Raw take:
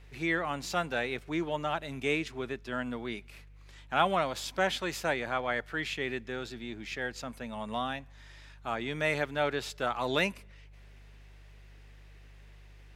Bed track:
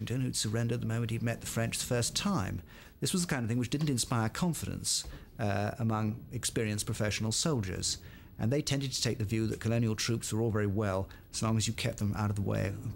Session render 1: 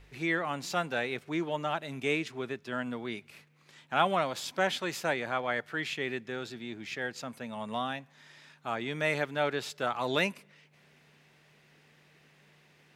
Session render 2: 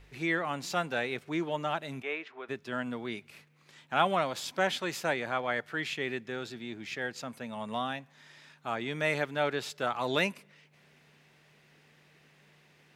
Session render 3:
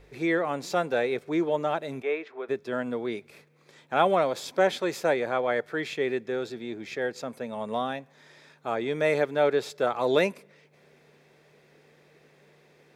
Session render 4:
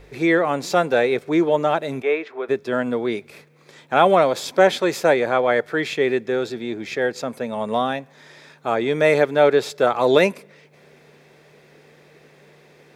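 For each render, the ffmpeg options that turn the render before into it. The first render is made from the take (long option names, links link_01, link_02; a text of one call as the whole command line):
ffmpeg -i in.wav -af "bandreject=frequency=50:width_type=h:width=4,bandreject=frequency=100:width_type=h:width=4" out.wav
ffmpeg -i in.wav -filter_complex "[0:a]asplit=3[link_01][link_02][link_03];[link_01]afade=type=out:start_time=2.01:duration=0.02[link_04];[link_02]highpass=600,lowpass=2100,afade=type=in:start_time=2.01:duration=0.02,afade=type=out:start_time=2.48:duration=0.02[link_05];[link_03]afade=type=in:start_time=2.48:duration=0.02[link_06];[link_04][link_05][link_06]amix=inputs=3:normalize=0" out.wav
ffmpeg -i in.wav -af "equalizer=frequency=460:width=1.2:gain=11,bandreject=frequency=2900:width=9.1" out.wav
ffmpeg -i in.wav -af "volume=8dB,alimiter=limit=-3dB:level=0:latency=1" out.wav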